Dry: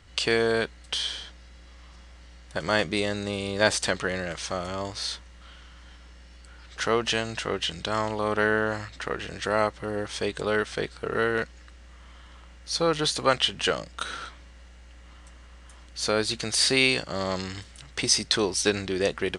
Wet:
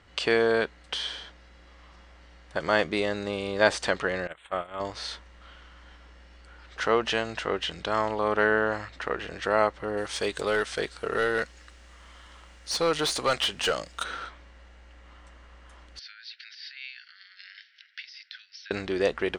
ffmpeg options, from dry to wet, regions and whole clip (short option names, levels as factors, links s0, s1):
-filter_complex "[0:a]asettb=1/sr,asplit=3[s0][s1][s2];[s0]atrim=end=4.274[s3];[s1]atrim=start=4.27:end=4.8,asetpts=PTS-STARTPTS,afade=t=in:d=0.004:c=qsin,afade=t=out:st=0.526:d=0.004:c=qsin,agate=range=0.141:threshold=0.0251:ratio=16:release=100:detection=peak,asuperstop=centerf=5400:order=8:qfactor=1.3,tiltshelf=f=720:g=-3.5[s4];[s2]atrim=start=4.796[s5];[s3][s4]acrossfade=d=0.004:c1=hsin:c2=qsin[s6];[s6][s5]acrossfade=d=0.004:c1=qsin:c2=hsin,asettb=1/sr,asplit=3[s7][s8][s9];[s7]atrim=end=9.974[s10];[s8]atrim=start=9.97:end=14.04,asetpts=PTS-STARTPTS,afade=t=in:d=0.004:c=qsin,afade=t=out:st=4.066:d=0.004:c=qsin,aemphasis=mode=production:type=75fm,volume=8.91,asoftclip=hard,volume=0.112[s11];[s9]atrim=start=14.036[s12];[s10][s11]acrossfade=d=0.004:c1=hsin:c2=qsin[s13];[s13][s12]acrossfade=d=0.004:c1=qsin:c2=hsin,asettb=1/sr,asplit=3[s14][s15][s16];[s14]atrim=end=15.994[s17];[s15]atrim=start=15.99:end=18.71,asetpts=PTS-STARTPTS,afade=t=in:d=0.004:c=qsin,afade=t=out:st=2.716:d=0.004:c=qsin,acompressor=threshold=0.0282:ratio=8:attack=3.2:release=140:knee=1:detection=peak,acrossover=split=1400[s18][s19];[s18]aeval=exprs='val(0)*(1-0.5/2+0.5/2*cos(2*PI*5.2*n/s))':c=same[s20];[s19]aeval=exprs='val(0)*(1-0.5/2-0.5/2*cos(2*PI*5.2*n/s))':c=same[s21];[s20][s21]amix=inputs=2:normalize=0,asuperpass=centerf=2900:order=20:qfactor=0.71[s22];[s16]atrim=start=18.706[s23];[s17][s22]acrossfade=d=0.004:c1=hsin:c2=qsin[s24];[s24][s23]acrossfade=d=0.004:c1=qsin:c2=hsin,asubboost=boost=2:cutoff=72,lowpass=f=1900:p=1,lowshelf=f=180:g=-11,volume=1.41"